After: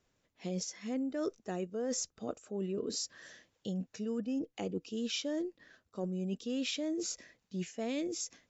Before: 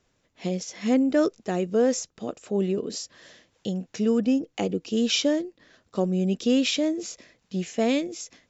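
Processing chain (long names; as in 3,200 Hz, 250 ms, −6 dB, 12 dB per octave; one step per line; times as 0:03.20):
noise reduction from a noise print of the clip's start 7 dB
reversed playback
downward compressor 6 to 1, threshold −34 dBFS, peak gain reduction 16.5 dB
reversed playback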